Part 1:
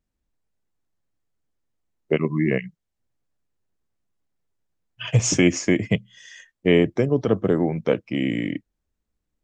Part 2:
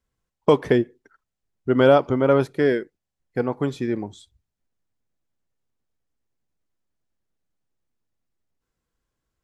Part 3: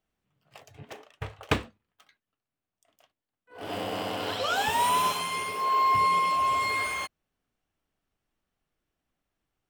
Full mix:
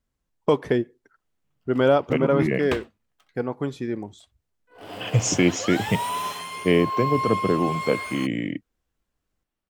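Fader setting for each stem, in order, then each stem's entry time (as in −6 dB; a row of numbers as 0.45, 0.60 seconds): −2.0, −3.5, −3.5 decibels; 0.00, 0.00, 1.20 seconds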